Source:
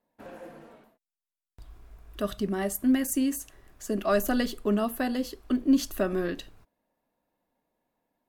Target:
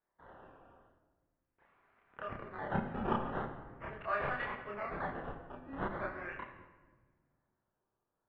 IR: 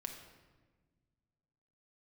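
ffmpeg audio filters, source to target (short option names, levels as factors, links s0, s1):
-filter_complex "[0:a]highpass=1400,acrusher=samples=14:mix=1:aa=0.000001:lfo=1:lforange=14:lforate=0.41,lowpass=f=2100:w=0.5412,lowpass=f=2100:w=1.3066,asplit=2[s0][s1];[1:a]atrim=start_sample=2205,adelay=29[s2];[s1][s2]afir=irnorm=-1:irlink=0,volume=1.58[s3];[s0][s3]amix=inputs=2:normalize=0,volume=0.708"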